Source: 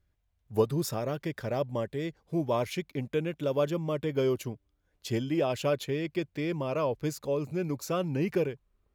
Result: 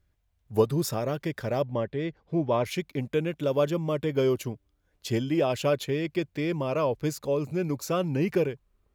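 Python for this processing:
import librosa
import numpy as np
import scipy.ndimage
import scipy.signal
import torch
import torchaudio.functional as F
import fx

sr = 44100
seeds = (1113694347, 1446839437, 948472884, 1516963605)

y = fx.lowpass(x, sr, hz=3600.0, slope=12, at=(1.64, 2.65))
y = y * librosa.db_to_amplitude(3.0)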